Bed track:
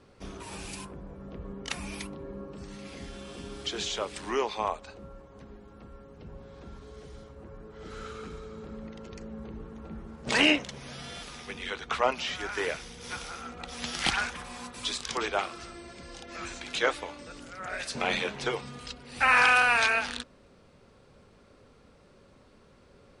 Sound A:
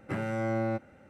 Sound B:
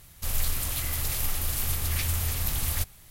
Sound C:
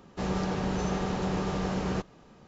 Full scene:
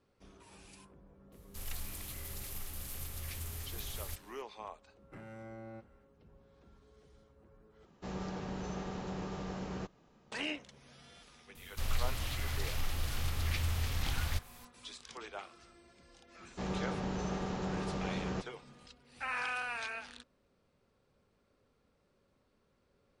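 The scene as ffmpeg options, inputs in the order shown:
-filter_complex "[2:a]asplit=2[s0][s1];[3:a]asplit=2[s2][s3];[0:a]volume=0.158[s4];[s0]aresample=32000,aresample=44100[s5];[1:a]alimiter=level_in=1.26:limit=0.0631:level=0:latency=1:release=47,volume=0.794[s6];[s1]acrossover=split=5600[s7][s8];[s8]acompressor=threshold=0.00447:ratio=4:attack=1:release=60[s9];[s7][s9]amix=inputs=2:normalize=0[s10];[s4]asplit=2[s11][s12];[s11]atrim=end=7.854[s13];[s2]atrim=end=2.47,asetpts=PTS-STARTPTS,volume=0.299[s14];[s12]atrim=start=10.316[s15];[s5]atrim=end=3.1,asetpts=PTS-STARTPTS,volume=0.188,afade=t=in:d=0.004:c=hsin,afade=t=out:st=3.096:d=0.004:c=hsin,adelay=1320[s16];[s6]atrim=end=1.09,asetpts=PTS-STARTPTS,volume=0.178,afade=t=in:d=0.1,afade=t=out:st=0.99:d=0.1,adelay=5030[s17];[s10]atrim=end=3.1,asetpts=PTS-STARTPTS,volume=0.596,afade=t=in:d=0.004:c=hsin,afade=t=out:st=3.096:d=0.004:c=hsin,adelay=11550[s18];[s3]atrim=end=2.47,asetpts=PTS-STARTPTS,volume=0.447,afade=t=in:d=0.004:c=hsin,afade=t=out:st=2.466:d=0.004:c=hsin,adelay=16400[s19];[s13][s14]acrossfade=d=0.004:c1=hsin:c2=hsin[s20];[s20][s15]acrossfade=d=0.004:c1=hsin:c2=hsin[s21];[s21][s16][s17][s18][s19]amix=inputs=5:normalize=0"

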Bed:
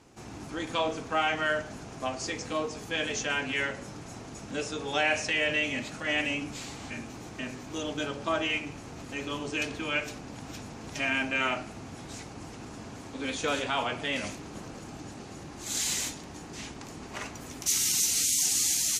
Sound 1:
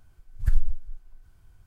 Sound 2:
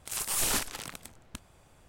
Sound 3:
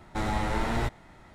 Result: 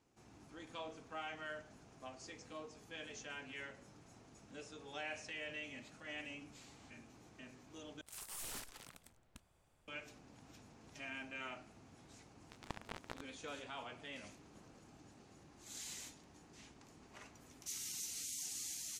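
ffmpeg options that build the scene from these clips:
-filter_complex "[0:a]volume=0.119[s0];[2:a]asoftclip=type=tanh:threshold=0.0422[s1];[3:a]acrusher=bits=2:mix=0:aa=0.5[s2];[s0]asplit=2[s3][s4];[s3]atrim=end=8.014[s5];[s1]atrim=end=1.87,asetpts=PTS-STARTPTS,volume=0.188[s6];[s4]atrim=start=9.876[s7];[s2]atrim=end=1.34,asetpts=PTS-STARTPTS,volume=0.473,afade=t=in:d=0.004:c=hsin,afade=t=out:st=1.336:d=0.004:c=hsin,adelay=12340[s8];[s5][s6]acrossfade=d=0.004:c1=hsin:c2=hsin[s9];[s9][s7]acrossfade=d=0.004:c1=hsin:c2=hsin[s10];[s10][s8]amix=inputs=2:normalize=0"

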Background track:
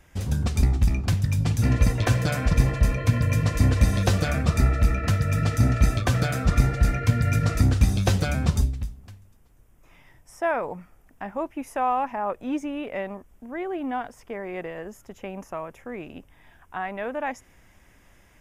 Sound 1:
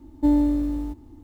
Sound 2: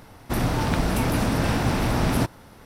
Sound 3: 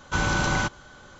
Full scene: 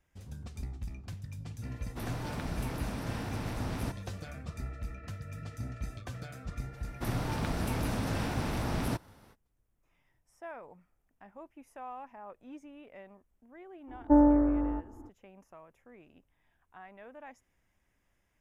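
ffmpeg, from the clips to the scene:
-filter_complex "[2:a]asplit=2[s0][s1];[0:a]volume=0.106[s2];[1:a]firequalizer=gain_entry='entry(260,0);entry(500,11);entry(1000,10);entry(1500,13);entry(2900,-29)':delay=0.05:min_phase=1[s3];[s0]atrim=end=2.65,asetpts=PTS-STARTPTS,volume=0.178,afade=t=in:d=0.004:c=hsin,afade=t=out:st=2.646:d=0.004:c=hsin,adelay=1660[s4];[s1]atrim=end=2.65,asetpts=PTS-STARTPTS,volume=0.299,afade=t=in:d=0.05,afade=t=out:st=2.6:d=0.05,adelay=6710[s5];[s3]atrim=end=1.23,asetpts=PTS-STARTPTS,volume=0.596,afade=t=in:d=0.02,afade=t=out:st=1.21:d=0.02,adelay=13870[s6];[s2][s4][s5][s6]amix=inputs=4:normalize=0"

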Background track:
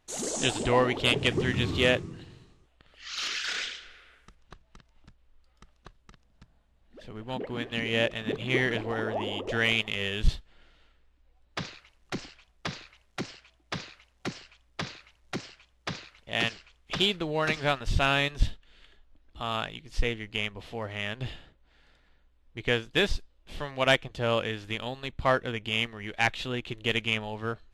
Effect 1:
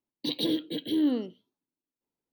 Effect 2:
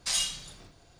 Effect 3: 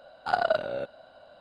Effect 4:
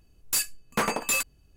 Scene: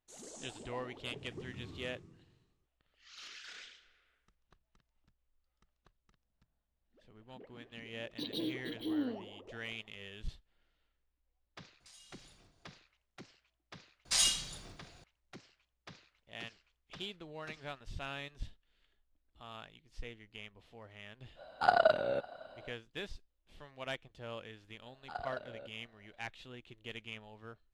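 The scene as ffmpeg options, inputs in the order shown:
-filter_complex "[2:a]asplit=2[s0][s1];[3:a]asplit=2[s2][s3];[0:a]volume=0.126[s4];[s0]acompressor=threshold=0.0112:ratio=8:attack=0.29:release=145:knee=1:detection=rms[s5];[s2]asplit=2[s6][s7];[s7]adelay=553.9,volume=0.0562,highshelf=f=4000:g=-12.5[s8];[s6][s8]amix=inputs=2:normalize=0[s9];[s3]aresample=22050,aresample=44100[s10];[1:a]atrim=end=2.32,asetpts=PTS-STARTPTS,volume=0.316,afade=t=in:d=0.004:c=hsin,afade=t=out:st=2.316:d=0.004:c=hsin,adelay=350154S[s11];[s5]atrim=end=0.99,asetpts=PTS-STARTPTS,volume=0.224,afade=t=in:d=0.004:c=hsin,afade=t=out:st=0.986:d=0.004:c=hsin,adelay=11800[s12];[s1]atrim=end=0.99,asetpts=PTS-STARTPTS,volume=0.944,afade=t=in:d=0.004:c=hsin,afade=t=out:st=0.986:d=0.004:c=hsin,adelay=14050[s13];[s9]atrim=end=1.4,asetpts=PTS-STARTPTS,volume=0.841,afade=t=in:d=0.05,afade=t=out:st=1.35:d=0.05,adelay=21350[s14];[s10]atrim=end=1.4,asetpts=PTS-STARTPTS,volume=0.141,afade=t=in:d=0.004:c=hsin,afade=t=out:st=1.396:d=0.004:c=hsin,adelay=24820[s15];[s4][s11][s12][s13][s14][s15]amix=inputs=6:normalize=0"

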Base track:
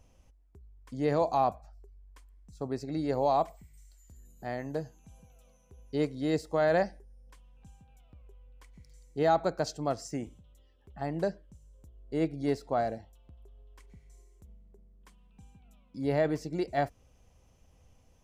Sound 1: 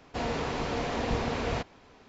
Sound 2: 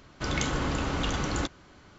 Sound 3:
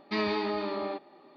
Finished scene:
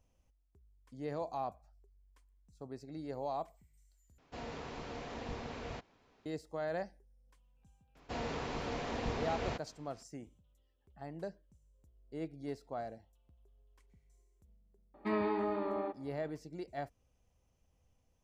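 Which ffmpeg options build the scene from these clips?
-filter_complex "[1:a]asplit=2[s0][s1];[0:a]volume=0.251[s2];[3:a]lowpass=1500[s3];[s2]asplit=2[s4][s5];[s4]atrim=end=4.184[s6];[s0]atrim=end=2.08,asetpts=PTS-STARTPTS,volume=0.224[s7];[s5]atrim=start=6.256[s8];[s1]atrim=end=2.08,asetpts=PTS-STARTPTS,volume=0.422,afade=t=in:d=0.004:c=hsin,afade=t=out:st=2.076:d=0.004:c=hsin,adelay=7950[s9];[s3]atrim=end=1.36,asetpts=PTS-STARTPTS,volume=0.708,afade=t=in:d=0.004:c=hsin,afade=t=out:st=1.356:d=0.004:c=hsin,adelay=14940[s10];[s6][s7]acrossfade=d=0.004:c1=hsin:c2=hsin[s11];[s11][s8]acrossfade=d=0.004:c1=hsin:c2=hsin[s12];[s12][s9][s10]amix=inputs=3:normalize=0"

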